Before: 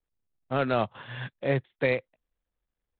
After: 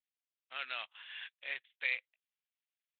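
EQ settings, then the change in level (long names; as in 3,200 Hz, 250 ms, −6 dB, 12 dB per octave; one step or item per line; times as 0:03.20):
high-pass with resonance 2,700 Hz, resonance Q 1.8
Bessel low-pass filter 3,500 Hz
high-frequency loss of the air 91 metres
−1.5 dB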